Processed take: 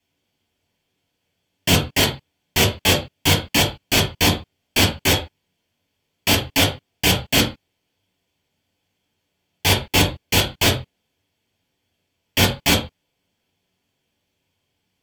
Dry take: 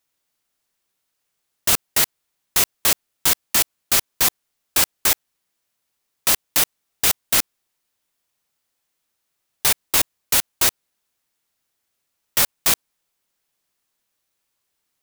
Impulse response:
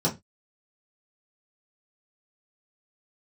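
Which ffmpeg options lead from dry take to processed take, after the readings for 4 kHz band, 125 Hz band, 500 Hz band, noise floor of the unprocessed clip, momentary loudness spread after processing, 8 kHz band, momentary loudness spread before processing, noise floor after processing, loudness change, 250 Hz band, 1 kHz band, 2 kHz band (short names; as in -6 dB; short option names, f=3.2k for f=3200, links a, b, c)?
+5.5 dB, +17.5 dB, +10.0 dB, -76 dBFS, 8 LU, -4.0 dB, 5 LU, -75 dBFS, 0.0 dB, +14.0 dB, +4.5 dB, +5.5 dB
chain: -filter_complex "[0:a]equalizer=f=9.7k:t=o:w=0.23:g=-14[a];[1:a]atrim=start_sample=2205,atrim=end_sample=3969,asetrate=25578,aresample=44100[b];[a][b]afir=irnorm=-1:irlink=0,volume=-7.5dB"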